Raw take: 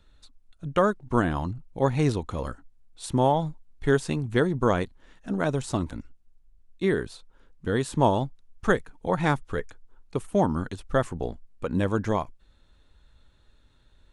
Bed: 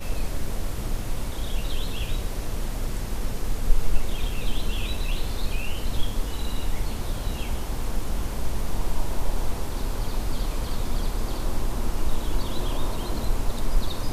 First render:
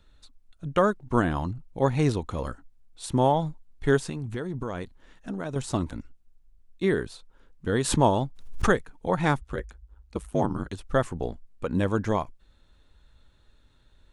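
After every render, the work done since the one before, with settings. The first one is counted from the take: 4.08–5.56 compressor, threshold -28 dBFS; 7.69–8.75 backwards sustainer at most 71 dB/s; 9.41–10.71 ring modulator 51 Hz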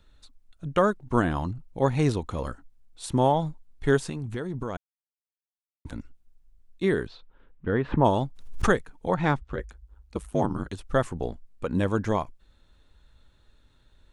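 4.77–5.85 mute; 7.06–8.04 LPF 4600 Hz -> 1900 Hz 24 dB/oct; 9.14–9.6 air absorption 110 m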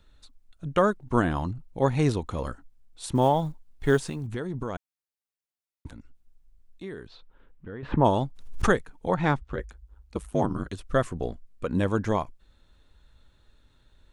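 3.15–4.28 block floating point 7-bit; 5.87–7.83 compressor 2:1, threshold -46 dBFS; 10.45–11.71 Butterworth band-stop 860 Hz, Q 6.2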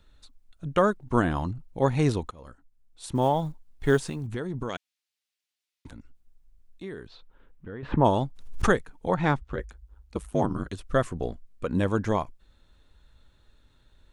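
2.31–3.98 fade in equal-power, from -22.5 dB; 4.69–5.87 weighting filter D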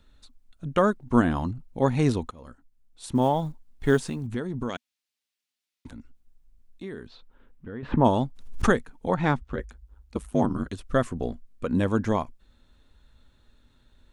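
bell 240 Hz +7.5 dB 0.28 oct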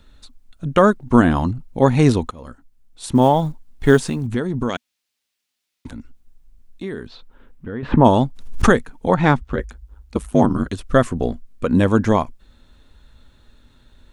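gain +8.5 dB; limiter -1 dBFS, peak gain reduction 2 dB

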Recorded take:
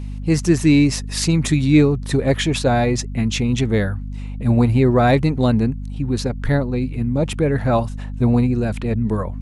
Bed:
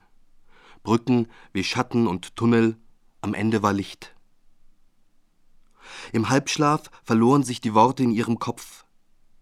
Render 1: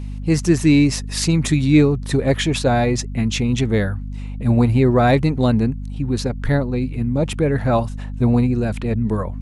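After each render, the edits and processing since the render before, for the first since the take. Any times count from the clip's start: nothing audible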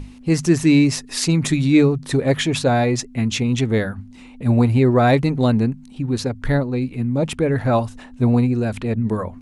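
notches 50/100/150/200 Hz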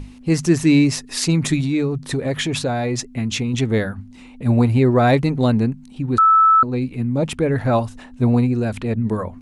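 1.6–3.54 compressor 3:1, threshold -18 dBFS; 6.18–6.63 bleep 1310 Hz -9 dBFS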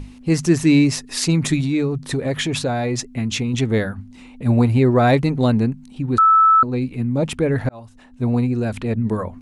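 7.69–8.97 fade in equal-power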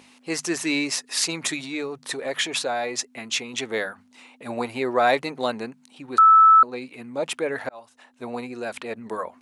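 HPF 590 Hz 12 dB/oct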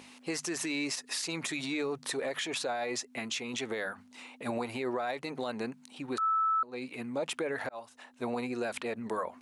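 compressor 12:1, threshold -27 dBFS, peak gain reduction 15.5 dB; limiter -24.5 dBFS, peak gain reduction 10.5 dB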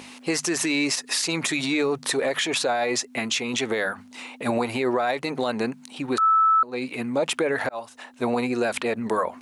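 gain +10 dB

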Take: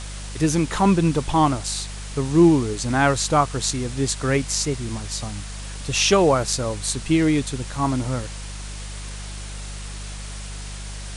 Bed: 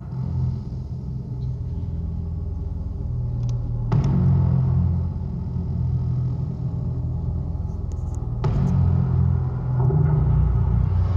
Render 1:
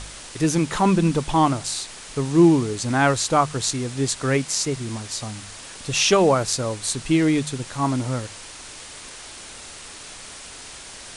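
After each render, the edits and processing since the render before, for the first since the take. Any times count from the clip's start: de-hum 50 Hz, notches 4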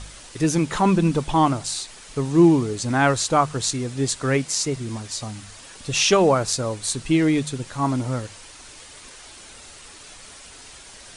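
denoiser 6 dB, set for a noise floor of -40 dBFS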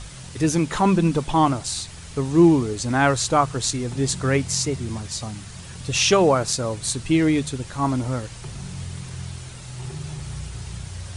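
add bed -14.5 dB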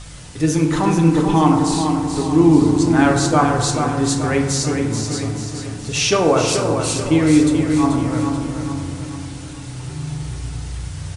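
feedback echo 0.434 s, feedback 49%, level -6.5 dB; FDN reverb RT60 1.6 s, low-frequency decay 1.1×, high-frequency decay 0.35×, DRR 2 dB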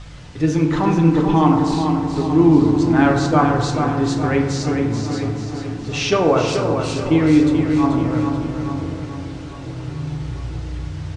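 air absorption 140 m; darkening echo 0.849 s, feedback 65%, level -16 dB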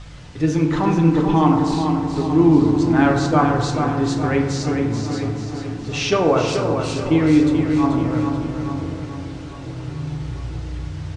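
gain -1 dB

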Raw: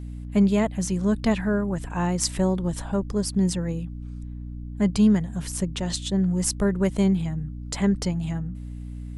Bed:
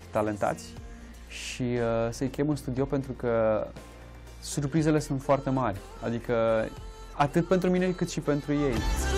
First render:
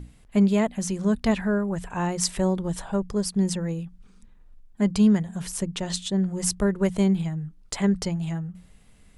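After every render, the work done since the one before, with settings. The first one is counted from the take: notches 60/120/180/240/300 Hz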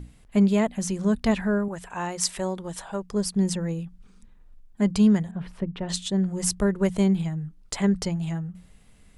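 1.68–3.13 low shelf 300 Hz -11.5 dB; 5.31–5.89 air absorption 430 m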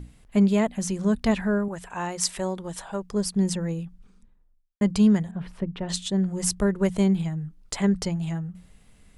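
3.8–4.81 studio fade out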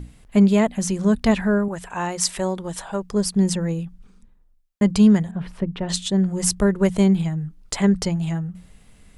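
gain +4.5 dB; limiter -2 dBFS, peak gain reduction 1.5 dB

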